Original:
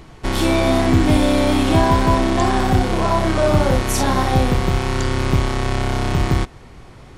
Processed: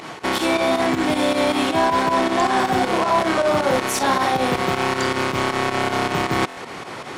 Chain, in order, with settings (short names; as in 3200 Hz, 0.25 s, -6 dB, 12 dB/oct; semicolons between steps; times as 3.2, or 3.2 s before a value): HPF 160 Hz 12 dB/oct; high shelf 6000 Hz +8.5 dB; reverse; compressor 6:1, threshold -27 dBFS, peak gain reduction 14.5 dB; reverse; overdrive pedal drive 15 dB, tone 2400 Hz, clips at -13 dBFS; pump 158 bpm, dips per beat 2, -10 dB, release 83 ms; stuck buffer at 6.48, samples 1024, times 3; gain +7.5 dB